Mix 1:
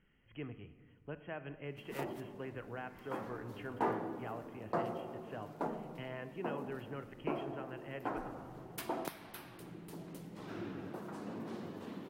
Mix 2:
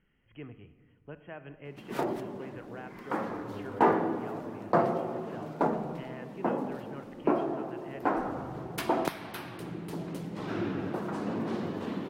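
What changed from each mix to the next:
background +11.0 dB
master: add high-shelf EQ 7,900 Hz −11 dB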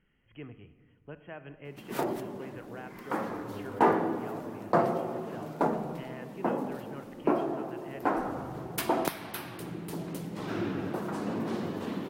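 master: add high-shelf EQ 7,900 Hz +11 dB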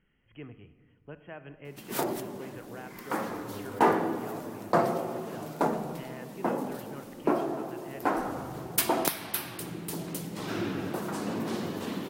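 background: add high-shelf EQ 3,400 Hz +10.5 dB

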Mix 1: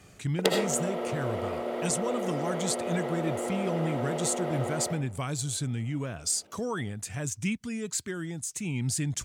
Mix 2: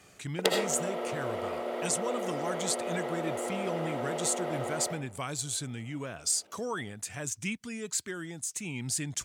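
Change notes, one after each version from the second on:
master: add low-shelf EQ 220 Hz −11.5 dB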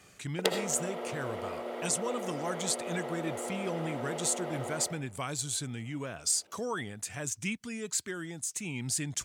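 background: send −6.5 dB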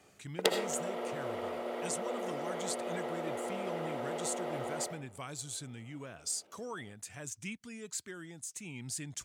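speech −7.5 dB

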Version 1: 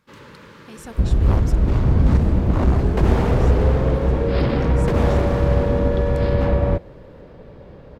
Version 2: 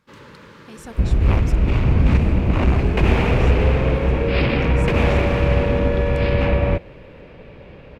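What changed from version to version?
second sound: add parametric band 2,500 Hz +15 dB 0.7 octaves
master: add high-shelf EQ 11,000 Hz −4.5 dB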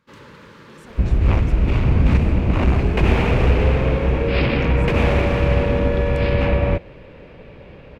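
speech −10.5 dB

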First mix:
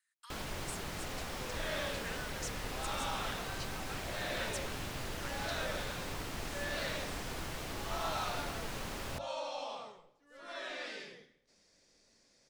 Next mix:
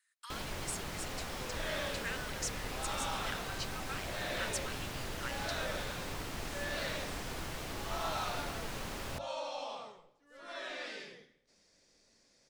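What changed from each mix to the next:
speech +5.5 dB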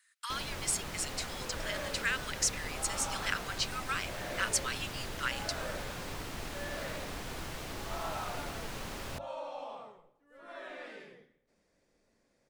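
speech +9.0 dB
second sound: add parametric band 5,200 Hz −15 dB 1.7 octaves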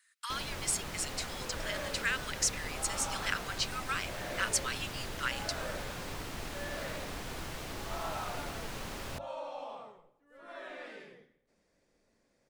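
nothing changed

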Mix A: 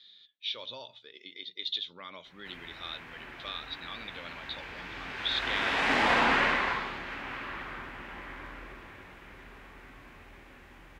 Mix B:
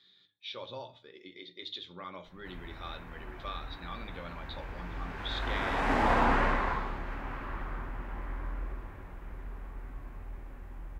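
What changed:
speech: send on
master: remove meter weighting curve D

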